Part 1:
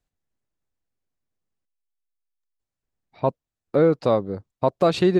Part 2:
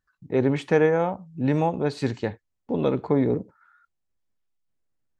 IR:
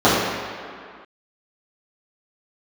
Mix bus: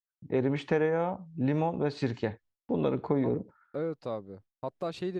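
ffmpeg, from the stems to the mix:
-filter_complex "[0:a]volume=-15.5dB[a];[1:a]lowpass=5.1k,volume=-2dB[b];[a][b]amix=inputs=2:normalize=0,agate=range=-33dB:threshold=-51dB:ratio=3:detection=peak,acompressor=threshold=-25dB:ratio=2.5"

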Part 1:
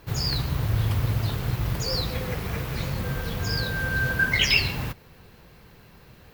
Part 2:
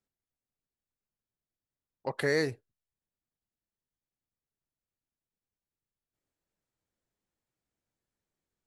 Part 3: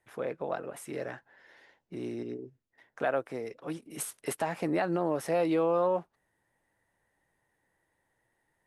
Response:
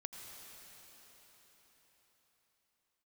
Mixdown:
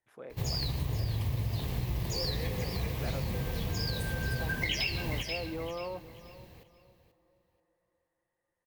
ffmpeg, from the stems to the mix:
-filter_complex "[0:a]equalizer=f=1.4k:t=o:w=0.34:g=-14.5,adelay=300,volume=-3.5dB,asplit=2[a][b];[b]volume=-12dB[c];[1:a]adelay=50,volume=-14dB[d];[2:a]volume=-12.5dB,asplit=3[e][f][g];[f]volume=-13.5dB[h];[g]volume=-16.5dB[i];[3:a]atrim=start_sample=2205[j];[h][j]afir=irnorm=-1:irlink=0[k];[c][i]amix=inputs=2:normalize=0,aecho=0:1:484|968|1452|1936:1|0.25|0.0625|0.0156[l];[a][d][e][k][l]amix=inputs=5:normalize=0,equalizer=f=65:w=6:g=4.5,acompressor=threshold=-28dB:ratio=6"

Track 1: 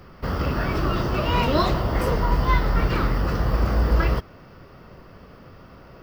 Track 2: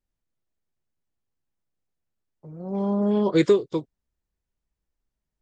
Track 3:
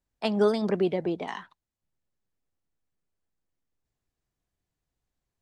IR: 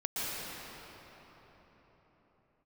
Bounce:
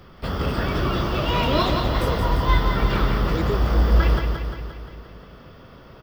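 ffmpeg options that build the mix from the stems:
-filter_complex "[0:a]equalizer=f=3.4k:w=6.1:g=10.5,volume=-1dB,asplit=2[a][b];[b]volume=-5.5dB[c];[1:a]volume=-10.5dB[d];[2:a]alimiter=limit=-18.5dB:level=0:latency=1,crystalizer=i=4.5:c=0,volume=-12dB[e];[c]aecho=0:1:175|350|525|700|875|1050|1225|1400|1575:1|0.59|0.348|0.205|0.121|0.0715|0.0422|0.0249|0.0147[f];[a][d][e][f]amix=inputs=4:normalize=0"

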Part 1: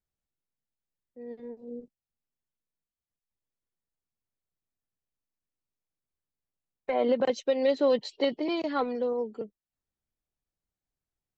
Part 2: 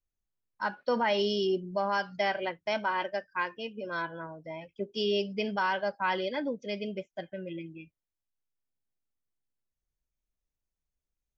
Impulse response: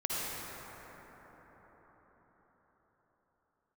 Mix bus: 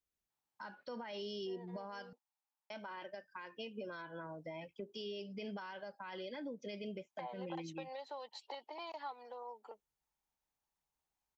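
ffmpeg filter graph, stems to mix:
-filter_complex "[0:a]acompressor=threshold=-38dB:ratio=3,highpass=f=870:t=q:w=6.2,adelay=300,volume=-4dB[a];[1:a]highpass=f=140:p=1,acompressor=threshold=-38dB:ratio=6,alimiter=level_in=10.5dB:limit=-24dB:level=0:latency=1:release=13,volume=-10.5dB,volume=-0.5dB,asplit=3[b][c][d];[b]atrim=end=2.13,asetpts=PTS-STARTPTS,afade=t=out:st=2.126:d=0.004:c=hsin[e];[c]atrim=start=2.13:end=2.7,asetpts=PTS-STARTPTS,volume=0[f];[d]atrim=start=2.7,asetpts=PTS-STARTPTS,afade=t=in:d=0.004:c=hsin[g];[e][f][g]concat=n=3:v=0:a=1[h];[a][h]amix=inputs=2:normalize=0,acrossover=split=360|3000[i][j][k];[j]acompressor=threshold=-45dB:ratio=4[l];[i][l][k]amix=inputs=3:normalize=0"

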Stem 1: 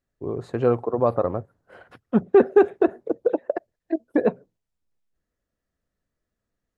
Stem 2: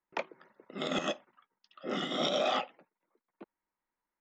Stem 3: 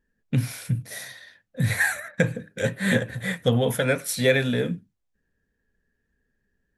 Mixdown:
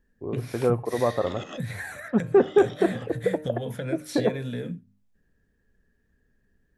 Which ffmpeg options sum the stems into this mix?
-filter_complex "[0:a]lowpass=2.8k,bandreject=f=152.9:t=h:w=4,bandreject=f=305.8:t=h:w=4,bandreject=f=458.7:t=h:w=4,bandreject=f=611.6:t=h:w=4,bandreject=f=764.5:t=h:w=4,bandreject=f=917.4:t=h:w=4,bandreject=f=1.0703k:t=h:w=4,bandreject=f=1.2232k:t=h:w=4,bandreject=f=1.3761k:t=h:w=4,bandreject=f=1.529k:t=h:w=4,bandreject=f=1.6819k:t=h:w=4,bandreject=f=1.8348k:t=h:w=4,bandreject=f=1.9877k:t=h:w=4,bandreject=f=2.1406k:t=h:w=4,bandreject=f=2.2935k:t=h:w=4,bandreject=f=2.4464k:t=h:w=4,bandreject=f=2.5993k:t=h:w=4,bandreject=f=2.7522k:t=h:w=4,bandreject=f=2.9051k:t=h:w=4,bandreject=f=3.058k:t=h:w=4,bandreject=f=3.2109k:t=h:w=4,bandreject=f=3.3638k:t=h:w=4,bandreject=f=3.5167k:t=h:w=4,bandreject=f=3.6696k:t=h:w=4,bandreject=f=3.8225k:t=h:w=4,bandreject=f=3.9754k:t=h:w=4,bandreject=f=4.1283k:t=h:w=4,bandreject=f=4.2812k:t=h:w=4,bandreject=f=4.4341k:t=h:w=4,bandreject=f=4.587k:t=h:w=4,bandreject=f=4.7399k:t=h:w=4,bandreject=f=4.8928k:t=h:w=4,volume=-3dB[a];[1:a]adelay=450,volume=-4.5dB[b];[2:a]lowshelf=f=400:g=6.5,acrossover=split=550|5900[c][d][e];[c]acompressor=threshold=-19dB:ratio=4[f];[d]acompressor=threshold=-29dB:ratio=4[g];[e]acompressor=threshold=-45dB:ratio=4[h];[f][g][h]amix=inputs=3:normalize=0,volume=1.5dB[i];[b][i]amix=inputs=2:normalize=0,bandreject=f=50:t=h:w=6,bandreject=f=100:t=h:w=6,bandreject=f=150:t=h:w=6,bandreject=f=200:t=h:w=6,bandreject=f=250:t=h:w=6,acompressor=threshold=-35dB:ratio=2.5,volume=0dB[j];[a][j]amix=inputs=2:normalize=0"

